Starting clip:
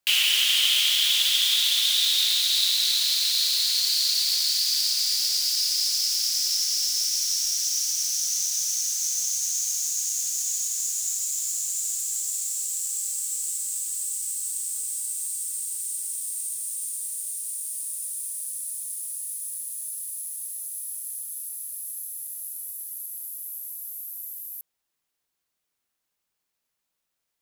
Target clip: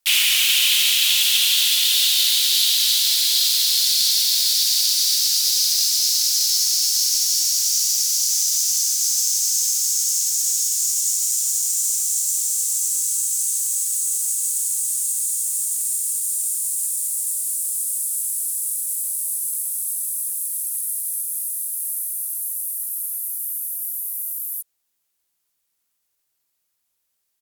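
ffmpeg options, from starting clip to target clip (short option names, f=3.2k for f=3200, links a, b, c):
-filter_complex "[0:a]asplit=4[a][b][c][d];[b]asetrate=35002,aresample=44100,atempo=1.25992,volume=-15dB[e];[c]asetrate=37084,aresample=44100,atempo=1.18921,volume=-6dB[f];[d]asetrate=52444,aresample=44100,atempo=0.840896,volume=-5dB[g];[a][e][f][g]amix=inputs=4:normalize=0,aemphasis=mode=production:type=cd,afreqshift=-53,volume=-1.5dB"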